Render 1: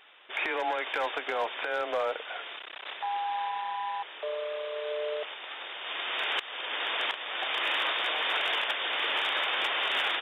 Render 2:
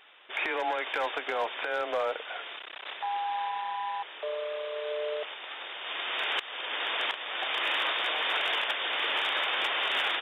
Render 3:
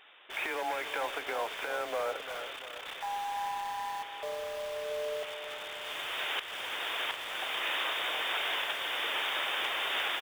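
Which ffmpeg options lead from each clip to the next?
-af anull
-filter_complex "[0:a]asplit=2[a][b];[b]aeval=exprs='(mod(56.2*val(0)+1,2)-1)/56.2':c=same,volume=-8dB[c];[a][c]amix=inputs=2:normalize=0,aecho=1:1:344|688|1032|1376|1720|2064:0.282|0.147|0.0762|0.0396|0.0206|0.0107,volume=-4dB"

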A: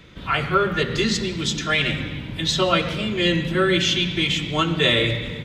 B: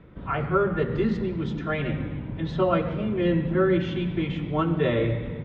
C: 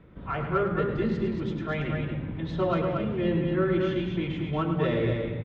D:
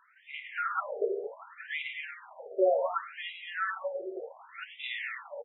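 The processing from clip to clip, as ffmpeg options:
-af "lowpass=1.1k,volume=-1dB"
-filter_complex "[0:a]asplit=2[a][b];[b]asoftclip=type=tanh:threshold=-17.5dB,volume=-3dB[c];[a][c]amix=inputs=2:normalize=0,aecho=1:1:105|230.3:0.355|0.562,volume=-8dB"
-af "afftfilt=real='re*between(b*sr/1024,510*pow(2800/510,0.5+0.5*sin(2*PI*0.67*pts/sr))/1.41,510*pow(2800/510,0.5+0.5*sin(2*PI*0.67*pts/sr))*1.41)':imag='im*between(b*sr/1024,510*pow(2800/510,0.5+0.5*sin(2*PI*0.67*pts/sr))/1.41,510*pow(2800/510,0.5+0.5*sin(2*PI*0.67*pts/sr))*1.41)':win_size=1024:overlap=0.75,volume=4.5dB"

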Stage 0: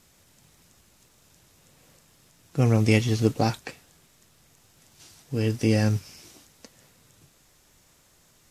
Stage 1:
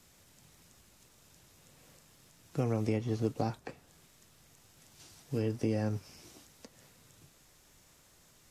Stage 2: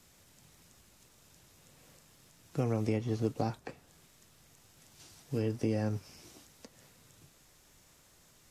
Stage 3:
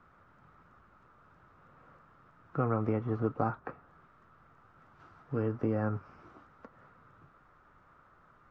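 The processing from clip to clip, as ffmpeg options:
-filter_complex "[0:a]acrossover=split=270|1300[a][b][c];[a]acompressor=threshold=-32dB:ratio=4[d];[b]acompressor=threshold=-29dB:ratio=4[e];[c]acompressor=threshold=-51dB:ratio=4[f];[d][e][f]amix=inputs=3:normalize=0,volume=-2.5dB"
-af anull
-af "lowpass=f=1.3k:t=q:w=6.2"

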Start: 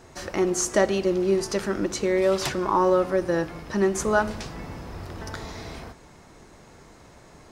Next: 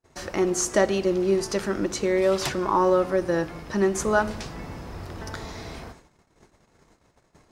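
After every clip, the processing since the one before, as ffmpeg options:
-af "agate=range=-35dB:threshold=-47dB:ratio=16:detection=peak"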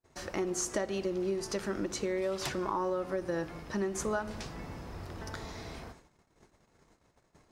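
-af "acompressor=threshold=-23dB:ratio=6,volume=-6dB"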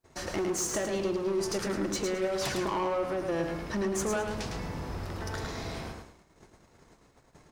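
-af "asoftclip=type=tanh:threshold=-32dB,aecho=1:1:107|214|321|428:0.562|0.157|0.0441|0.0123,volume=5.5dB"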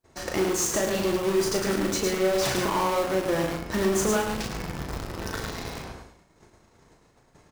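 -filter_complex "[0:a]asplit=2[a][b];[b]acrusher=bits=4:mix=0:aa=0.000001,volume=-4dB[c];[a][c]amix=inputs=2:normalize=0,asplit=2[d][e];[e]adelay=37,volume=-5dB[f];[d][f]amix=inputs=2:normalize=0"

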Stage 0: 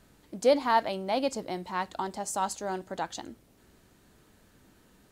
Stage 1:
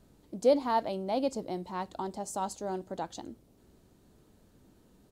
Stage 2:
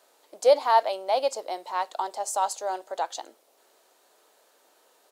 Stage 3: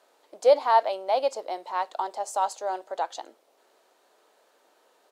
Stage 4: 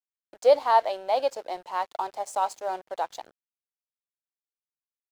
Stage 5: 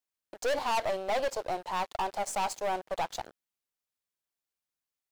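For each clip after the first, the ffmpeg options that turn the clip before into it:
-af "firequalizer=gain_entry='entry(380,0);entry(1700,-11);entry(3800,-6)':delay=0.05:min_phase=1"
-af "highpass=f=550:w=0.5412,highpass=f=550:w=1.3066,volume=9dB"
-af "aemphasis=mode=reproduction:type=cd"
-af "aeval=exprs='sgn(val(0))*max(abs(val(0))-0.00422,0)':c=same"
-af "aeval=exprs='(tanh(39.8*val(0)+0.35)-tanh(0.35))/39.8':c=same,volume=5.5dB"

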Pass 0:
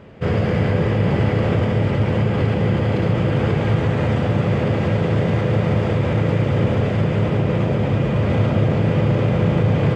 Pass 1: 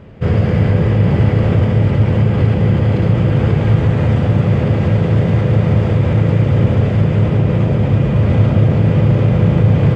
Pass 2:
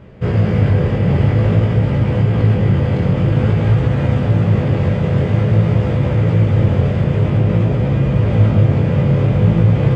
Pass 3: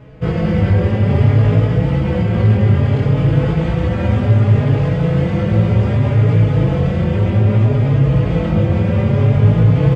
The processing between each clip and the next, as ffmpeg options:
-af "lowshelf=f=170:g=10"
-af "flanger=delay=15.5:depth=7:speed=0.5,volume=1.5dB"
-filter_complex "[0:a]asplit=2[a][b];[b]adelay=4.3,afreqshift=0.62[c];[a][c]amix=inputs=2:normalize=1,volume=3.5dB"

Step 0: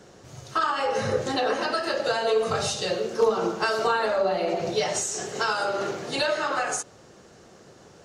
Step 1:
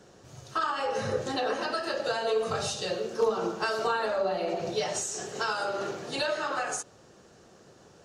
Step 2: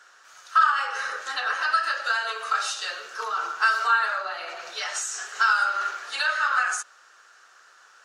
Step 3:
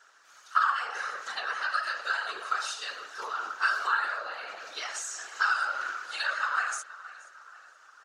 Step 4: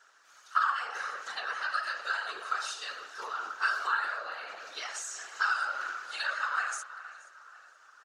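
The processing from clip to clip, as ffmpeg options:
-af "bandreject=f=2.1k:w=15,volume=-4.5dB"
-af "highpass=f=1.4k:t=q:w=3.6,volume=2.5dB"
-filter_complex "[0:a]asplit=2[a][b];[b]adelay=475,lowpass=f=3.4k:p=1,volume=-16dB,asplit=2[c][d];[d]adelay=475,lowpass=f=3.4k:p=1,volume=0.55,asplit=2[e][f];[f]adelay=475,lowpass=f=3.4k:p=1,volume=0.55,asplit=2[g][h];[h]adelay=475,lowpass=f=3.4k:p=1,volume=0.55,asplit=2[i][j];[j]adelay=475,lowpass=f=3.4k:p=1,volume=0.55[k];[a][c][e][g][i][k]amix=inputs=6:normalize=0,afftfilt=real='hypot(re,im)*cos(2*PI*random(0))':imag='hypot(re,im)*sin(2*PI*random(1))':win_size=512:overlap=0.75"
-filter_complex "[0:a]asplit=2[a][b];[b]adelay=390,highpass=300,lowpass=3.4k,asoftclip=type=hard:threshold=-19dB,volume=-17dB[c];[a][c]amix=inputs=2:normalize=0,volume=-2.5dB"

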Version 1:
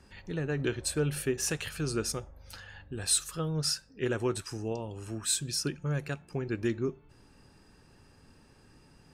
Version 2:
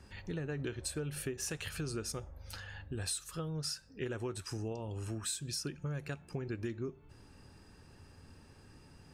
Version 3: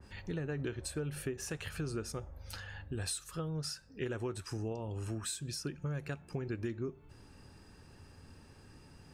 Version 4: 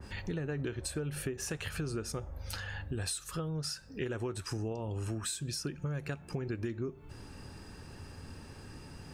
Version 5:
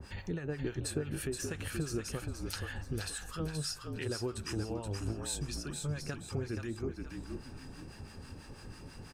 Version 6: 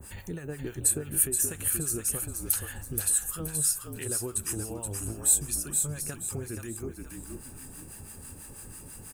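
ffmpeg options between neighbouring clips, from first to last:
-af "equalizer=f=86:w=2.7:g=7,acompressor=threshold=-36dB:ratio=5"
-af "adynamicequalizer=threshold=0.00178:dfrequency=2400:dqfactor=0.7:tfrequency=2400:tqfactor=0.7:attack=5:release=100:ratio=0.375:range=3:mode=cutabove:tftype=highshelf,volume=1dB"
-af "acompressor=threshold=-46dB:ratio=2,volume=8dB"
-filter_complex "[0:a]acrossover=split=880[a][b];[a]aeval=exprs='val(0)*(1-0.7/2+0.7/2*cos(2*PI*6.1*n/s))':c=same[c];[b]aeval=exprs='val(0)*(1-0.7/2-0.7/2*cos(2*PI*6.1*n/s))':c=same[d];[c][d]amix=inputs=2:normalize=0,asplit=6[e][f][g][h][i][j];[f]adelay=475,afreqshift=-46,volume=-5dB[k];[g]adelay=950,afreqshift=-92,volume=-13.6dB[l];[h]adelay=1425,afreqshift=-138,volume=-22.3dB[m];[i]adelay=1900,afreqshift=-184,volume=-30.9dB[n];[j]adelay=2375,afreqshift=-230,volume=-39.5dB[o];[e][k][l][m][n][o]amix=inputs=6:normalize=0,volume=1.5dB"
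-af "aexciter=amount=13.7:drive=4.3:freq=7.5k"

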